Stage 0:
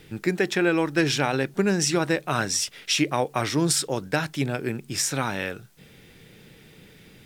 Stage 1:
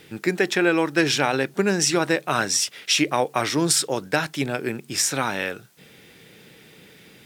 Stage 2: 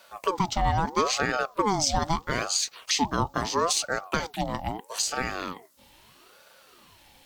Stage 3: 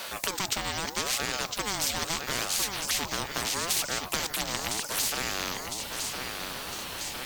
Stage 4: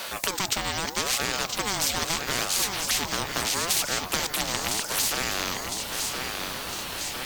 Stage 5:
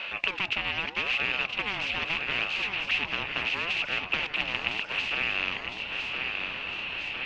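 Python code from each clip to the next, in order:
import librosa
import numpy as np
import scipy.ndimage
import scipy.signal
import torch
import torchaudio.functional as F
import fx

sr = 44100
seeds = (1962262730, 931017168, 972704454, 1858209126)

y1 = fx.highpass(x, sr, hz=250.0, slope=6)
y1 = F.gain(torch.from_numpy(y1), 3.5).numpy()
y2 = fx.env_phaser(y1, sr, low_hz=190.0, high_hz=2100.0, full_db=-21.5)
y2 = fx.ring_lfo(y2, sr, carrier_hz=710.0, swing_pct=45, hz=0.77)
y3 = fx.echo_feedback(y2, sr, ms=1007, feedback_pct=36, wet_db=-18)
y3 = fx.spectral_comp(y3, sr, ratio=4.0)
y4 = y3 + 10.0 ** (-11.5 / 20.0) * np.pad(y3, (int(976 * sr / 1000.0), 0))[:len(y3)]
y4 = F.gain(torch.from_numpy(y4), 3.0).numpy()
y5 = fx.ladder_lowpass(y4, sr, hz=2800.0, resonance_pct=80)
y5 = F.gain(torch.from_numpy(y5), 5.5).numpy()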